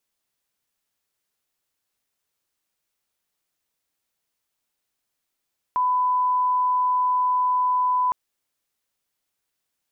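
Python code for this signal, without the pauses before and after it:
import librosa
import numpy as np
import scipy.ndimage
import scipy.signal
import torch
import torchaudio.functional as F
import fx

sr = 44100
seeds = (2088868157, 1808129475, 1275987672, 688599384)

y = fx.lineup_tone(sr, length_s=2.36, level_db=-18.0)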